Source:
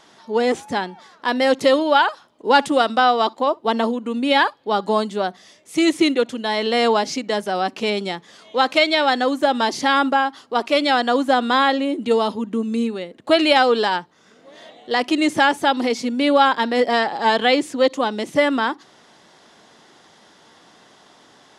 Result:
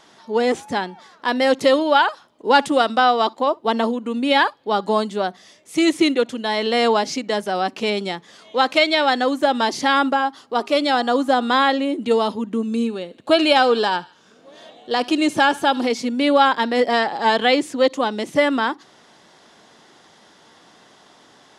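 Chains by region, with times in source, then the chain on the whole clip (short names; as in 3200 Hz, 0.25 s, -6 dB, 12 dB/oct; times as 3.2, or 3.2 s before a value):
10.14–11.48 de-hum 408.2 Hz, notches 3 + dynamic EQ 2200 Hz, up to -4 dB, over -34 dBFS, Q 1.2
12.67–15.87 notch 2000 Hz, Q 6.5 + thinning echo 74 ms, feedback 53%, high-pass 1000 Hz, level -19.5 dB
whole clip: dry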